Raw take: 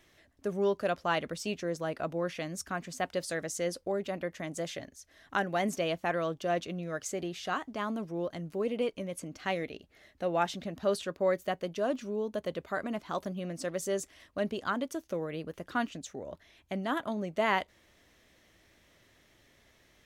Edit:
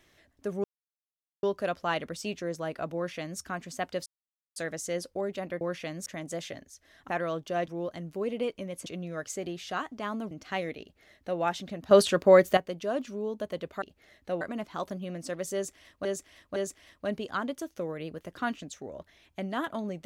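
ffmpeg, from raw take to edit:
-filter_complex "[0:a]asplit=15[s0][s1][s2][s3][s4][s5][s6][s7][s8][s9][s10][s11][s12][s13][s14];[s0]atrim=end=0.64,asetpts=PTS-STARTPTS,afade=t=out:st=0.636:d=0.004:c=hsin,apad=pad_dur=0.79[s15];[s1]atrim=start=0.64:end=3.27,asetpts=PTS-STARTPTS,afade=t=in:d=0.004:c=hsin,afade=t=out:st=2.626:d=0.004:c=hsin,apad=pad_dur=0.5[s16];[s2]atrim=start=3.27:end=4.322,asetpts=PTS-STARTPTS,afade=t=in:d=0.004:c=hsin[s17];[s3]atrim=start=2.158:end=2.612[s18];[s4]atrim=start=4.318:end=5.352[s19];[s5]atrim=start=6.028:end=6.622[s20];[s6]atrim=start=8.068:end=9.252[s21];[s7]atrim=start=6.618:end=8.072[s22];[s8]atrim=start=9.248:end=10.852[s23];[s9]atrim=start=10.848:end=11.512,asetpts=PTS-STARTPTS,volume=3.35[s24];[s10]atrim=start=11.508:end=12.762[s25];[s11]atrim=start=9.748:end=10.342[s26];[s12]atrim=start=12.758:end=14.402[s27];[s13]atrim=start=13.888:end=14.402[s28];[s14]atrim=start=13.888[s29];[s15][s16][s17]concat=n=3:v=0:a=1[s30];[s30][s18]acrossfade=d=0.004:c1=hsin:c2=hsin[s31];[s31][s19]acrossfade=d=0.004:c1=hsin:c2=hsin[s32];[s32][s20]acrossfade=d=0.004:c1=hsin:c2=hsin[s33];[s33][s21]acrossfade=d=0.004:c1=hsin:c2=hsin[s34];[s34][s22]acrossfade=d=0.004:c1=hsin:c2=hsin[s35];[s35][s23]acrossfade=d=0.004:c1=hsin:c2=hsin[s36];[s36][s24]acrossfade=d=0.004:c1=hsin:c2=hsin[s37];[s37][s25]acrossfade=d=0.004:c1=hsin:c2=hsin[s38];[s38][s26]acrossfade=d=0.004:c1=hsin:c2=hsin[s39];[s39][s27]acrossfade=d=0.004:c1=hsin:c2=hsin[s40];[s40][s28]acrossfade=d=0.004:c1=hsin:c2=hsin[s41];[s41][s29]acrossfade=d=0.004:c1=hsin:c2=hsin"

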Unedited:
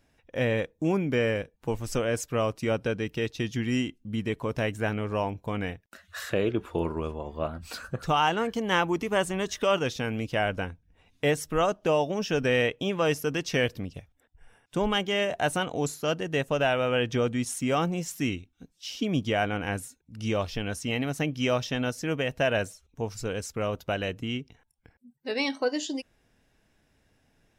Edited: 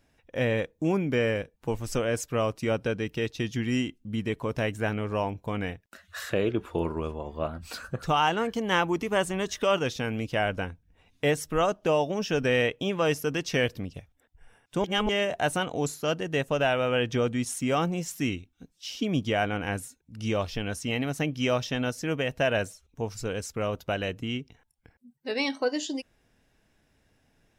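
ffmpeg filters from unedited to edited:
-filter_complex "[0:a]asplit=3[s0][s1][s2];[s0]atrim=end=14.842[s3];[s1]atrim=start=14.838:end=15.092,asetpts=PTS-STARTPTS,areverse[s4];[s2]atrim=start=15.088[s5];[s3][s4]acrossfade=d=0.004:c1=hsin:c2=hsin[s6];[s6][s5]acrossfade=d=0.004:c1=hsin:c2=hsin"

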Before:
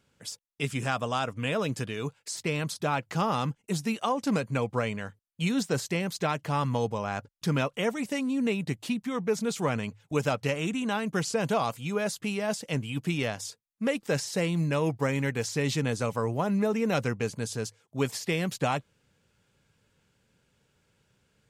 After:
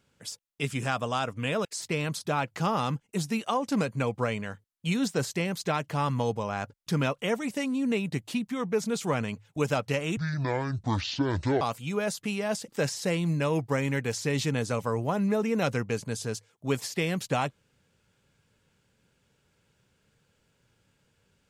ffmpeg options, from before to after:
-filter_complex "[0:a]asplit=5[s0][s1][s2][s3][s4];[s0]atrim=end=1.652[s5];[s1]atrim=start=2.198:end=10.724[s6];[s2]atrim=start=10.72:end=11.6,asetpts=PTS-STARTPTS,asetrate=26901,aresample=44100[s7];[s3]atrim=start=11.596:end=12.672[s8];[s4]atrim=start=13.988[s9];[s5][s6]acrossfade=d=0.004:c1=hsin:c2=hsin[s10];[s10][s7]acrossfade=d=0.004:c1=hsin:c2=hsin[s11];[s11][s8]acrossfade=d=0.004:c1=hsin:c2=hsin[s12];[s12][s9]acrossfade=d=0.004:c1=hsin:c2=hsin"

